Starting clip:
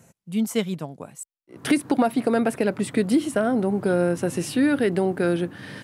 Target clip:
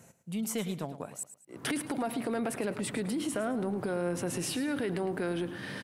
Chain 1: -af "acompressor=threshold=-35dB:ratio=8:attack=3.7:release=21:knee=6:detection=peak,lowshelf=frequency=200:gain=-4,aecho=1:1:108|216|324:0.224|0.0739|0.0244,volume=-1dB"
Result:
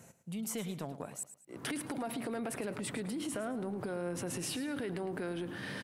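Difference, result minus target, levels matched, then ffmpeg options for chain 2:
downward compressor: peak gain reduction +5.5 dB
-af "acompressor=threshold=-28.5dB:ratio=8:attack=3.7:release=21:knee=6:detection=peak,lowshelf=frequency=200:gain=-4,aecho=1:1:108|216|324:0.224|0.0739|0.0244,volume=-1dB"

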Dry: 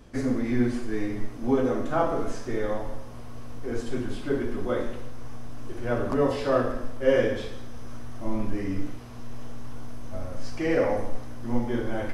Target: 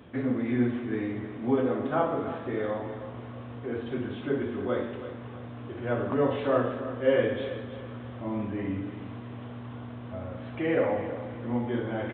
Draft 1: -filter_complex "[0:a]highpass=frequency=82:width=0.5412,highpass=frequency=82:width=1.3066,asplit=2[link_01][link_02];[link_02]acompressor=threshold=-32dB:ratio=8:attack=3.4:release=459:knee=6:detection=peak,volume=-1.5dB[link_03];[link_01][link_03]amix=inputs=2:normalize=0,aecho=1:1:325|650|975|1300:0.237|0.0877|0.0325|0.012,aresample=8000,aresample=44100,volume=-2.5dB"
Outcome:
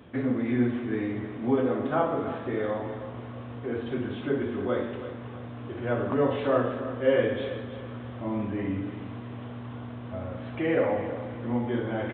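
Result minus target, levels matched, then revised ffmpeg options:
downward compressor: peak gain reduction −8 dB
-filter_complex "[0:a]highpass=frequency=82:width=0.5412,highpass=frequency=82:width=1.3066,asplit=2[link_01][link_02];[link_02]acompressor=threshold=-41dB:ratio=8:attack=3.4:release=459:knee=6:detection=peak,volume=-1.5dB[link_03];[link_01][link_03]amix=inputs=2:normalize=0,aecho=1:1:325|650|975|1300:0.237|0.0877|0.0325|0.012,aresample=8000,aresample=44100,volume=-2.5dB"

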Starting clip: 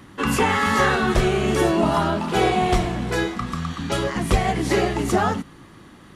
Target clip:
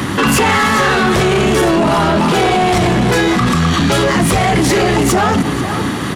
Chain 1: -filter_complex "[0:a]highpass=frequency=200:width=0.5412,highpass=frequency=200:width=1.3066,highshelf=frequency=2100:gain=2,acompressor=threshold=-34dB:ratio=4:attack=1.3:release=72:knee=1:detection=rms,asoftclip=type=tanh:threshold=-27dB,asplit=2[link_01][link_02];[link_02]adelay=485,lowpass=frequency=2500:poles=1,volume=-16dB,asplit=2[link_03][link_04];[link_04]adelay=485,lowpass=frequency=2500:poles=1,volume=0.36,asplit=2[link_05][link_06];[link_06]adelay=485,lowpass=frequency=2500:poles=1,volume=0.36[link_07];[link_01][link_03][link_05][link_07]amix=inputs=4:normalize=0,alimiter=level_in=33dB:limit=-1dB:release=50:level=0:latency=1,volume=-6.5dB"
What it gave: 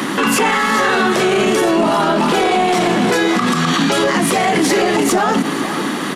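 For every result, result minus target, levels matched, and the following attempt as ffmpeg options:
125 Hz band −8.0 dB; downward compressor: peak gain reduction +6.5 dB
-filter_complex "[0:a]highpass=frequency=70:width=0.5412,highpass=frequency=70:width=1.3066,highshelf=frequency=2100:gain=2,acompressor=threshold=-34dB:ratio=4:attack=1.3:release=72:knee=1:detection=rms,asoftclip=type=tanh:threshold=-27dB,asplit=2[link_01][link_02];[link_02]adelay=485,lowpass=frequency=2500:poles=1,volume=-16dB,asplit=2[link_03][link_04];[link_04]adelay=485,lowpass=frequency=2500:poles=1,volume=0.36,asplit=2[link_05][link_06];[link_06]adelay=485,lowpass=frequency=2500:poles=1,volume=0.36[link_07];[link_01][link_03][link_05][link_07]amix=inputs=4:normalize=0,alimiter=level_in=33dB:limit=-1dB:release=50:level=0:latency=1,volume=-6.5dB"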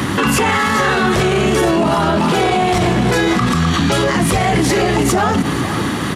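downward compressor: peak gain reduction +7 dB
-filter_complex "[0:a]highpass=frequency=70:width=0.5412,highpass=frequency=70:width=1.3066,highshelf=frequency=2100:gain=2,acompressor=threshold=-24.5dB:ratio=4:attack=1.3:release=72:knee=1:detection=rms,asoftclip=type=tanh:threshold=-27dB,asplit=2[link_01][link_02];[link_02]adelay=485,lowpass=frequency=2500:poles=1,volume=-16dB,asplit=2[link_03][link_04];[link_04]adelay=485,lowpass=frequency=2500:poles=1,volume=0.36,asplit=2[link_05][link_06];[link_06]adelay=485,lowpass=frequency=2500:poles=1,volume=0.36[link_07];[link_01][link_03][link_05][link_07]amix=inputs=4:normalize=0,alimiter=level_in=33dB:limit=-1dB:release=50:level=0:latency=1,volume=-6.5dB"

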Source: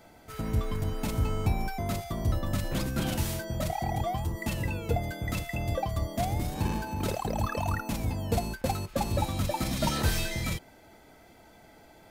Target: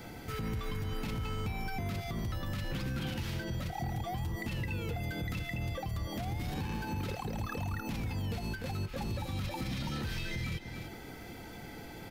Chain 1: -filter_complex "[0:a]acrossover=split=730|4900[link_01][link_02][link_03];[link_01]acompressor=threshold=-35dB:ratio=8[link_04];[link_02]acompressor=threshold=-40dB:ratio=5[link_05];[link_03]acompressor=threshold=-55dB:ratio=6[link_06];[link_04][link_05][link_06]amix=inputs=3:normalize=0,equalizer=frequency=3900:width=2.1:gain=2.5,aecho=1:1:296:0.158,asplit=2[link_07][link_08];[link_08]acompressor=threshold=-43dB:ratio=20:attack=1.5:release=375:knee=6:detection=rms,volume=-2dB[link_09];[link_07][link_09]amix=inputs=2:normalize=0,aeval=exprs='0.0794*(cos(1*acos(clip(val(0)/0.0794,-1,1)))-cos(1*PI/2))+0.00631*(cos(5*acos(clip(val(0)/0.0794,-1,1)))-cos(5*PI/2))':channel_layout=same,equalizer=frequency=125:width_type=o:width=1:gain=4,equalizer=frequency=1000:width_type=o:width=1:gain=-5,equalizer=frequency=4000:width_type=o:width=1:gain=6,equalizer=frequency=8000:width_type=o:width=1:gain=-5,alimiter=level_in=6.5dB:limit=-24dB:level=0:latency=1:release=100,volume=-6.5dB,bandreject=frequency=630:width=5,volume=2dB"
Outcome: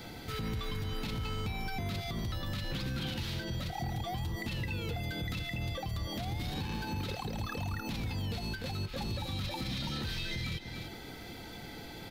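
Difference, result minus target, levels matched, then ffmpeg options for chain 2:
4,000 Hz band +5.0 dB
-filter_complex "[0:a]acrossover=split=730|4900[link_01][link_02][link_03];[link_01]acompressor=threshold=-35dB:ratio=8[link_04];[link_02]acompressor=threshold=-40dB:ratio=5[link_05];[link_03]acompressor=threshold=-55dB:ratio=6[link_06];[link_04][link_05][link_06]amix=inputs=3:normalize=0,equalizer=frequency=3900:width=2.1:gain=-6.5,aecho=1:1:296:0.158,asplit=2[link_07][link_08];[link_08]acompressor=threshold=-43dB:ratio=20:attack=1.5:release=375:knee=6:detection=rms,volume=-2dB[link_09];[link_07][link_09]amix=inputs=2:normalize=0,aeval=exprs='0.0794*(cos(1*acos(clip(val(0)/0.0794,-1,1)))-cos(1*PI/2))+0.00631*(cos(5*acos(clip(val(0)/0.0794,-1,1)))-cos(5*PI/2))':channel_layout=same,equalizer=frequency=125:width_type=o:width=1:gain=4,equalizer=frequency=1000:width_type=o:width=1:gain=-5,equalizer=frequency=4000:width_type=o:width=1:gain=6,equalizer=frequency=8000:width_type=o:width=1:gain=-5,alimiter=level_in=6.5dB:limit=-24dB:level=0:latency=1:release=100,volume=-6.5dB,bandreject=frequency=630:width=5,volume=2dB"

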